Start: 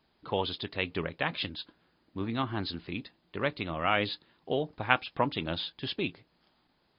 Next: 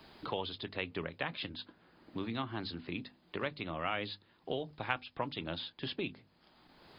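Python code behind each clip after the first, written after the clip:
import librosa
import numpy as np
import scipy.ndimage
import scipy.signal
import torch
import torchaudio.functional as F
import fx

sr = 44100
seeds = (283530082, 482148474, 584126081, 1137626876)

y = fx.hum_notches(x, sr, base_hz=50, count=5)
y = fx.band_squash(y, sr, depth_pct=70)
y = y * 10.0 ** (-6.5 / 20.0)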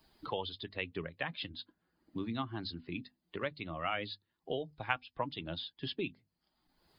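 y = fx.bin_expand(x, sr, power=1.5)
y = y * 10.0 ** (2.5 / 20.0)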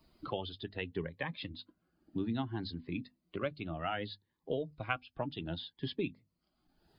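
y = fx.high_shelf(x, sr, hz=2500.0, db=-8.5)
y = fx.notch_cascade(y, sr, direction='rising', hz=0.64)
y = y * 10.0 ** (3.5 / 20.0)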